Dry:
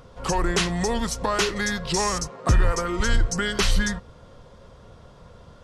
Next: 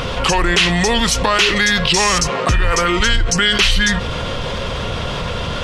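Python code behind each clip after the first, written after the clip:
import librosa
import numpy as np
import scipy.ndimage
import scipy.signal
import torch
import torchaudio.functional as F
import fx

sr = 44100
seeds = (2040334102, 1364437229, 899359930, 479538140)

y = fx.peak_eq(x, sr, hz=2800.0, db=13.5, octaves=1.3)
y = fx.env_flatten(y, sr, amount_pct=70)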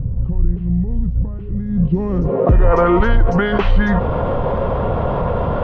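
y = fx.filter_sweep_lowpass(x, sr, from_hz=120.0, to_hz=830.0, start_s=1.54, end_s=2.77, q=1.5)
y = y * librosa.db_to_amplitude(4.0)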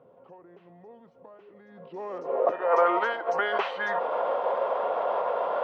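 y = fx.ladder_highpass(x, sr, hz=480.0, resonance_pct=30)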